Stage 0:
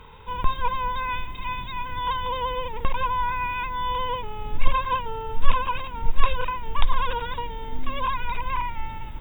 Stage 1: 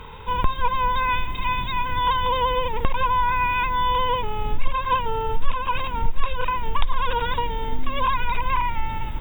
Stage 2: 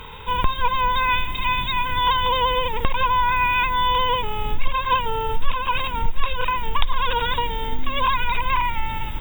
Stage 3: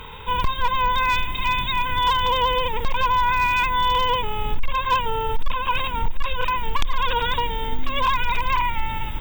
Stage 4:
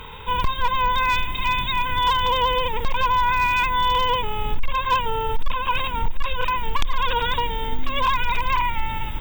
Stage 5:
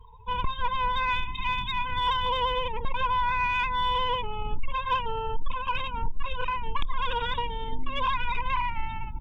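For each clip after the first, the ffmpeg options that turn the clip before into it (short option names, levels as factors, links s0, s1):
-af "acompressor=threshold=0.0631:ratio=2.5,volume=2.24"
-af "highshelf=f=2400:g=9.5"
-af "asoftclip=type=hard:threshold=0.224"
-af anull
-af "afftdn=nr=32:nf=-30,aeval=exprs='0.282*(cos(1*acos(clip(val(0)/0.282,-1,1)))-cos(1*PI/2))+0.0126*(cos(3*acos(clip(val(0)/0.282,-1,1)))-cos(3*PI/2))':c=same,volume=0.531"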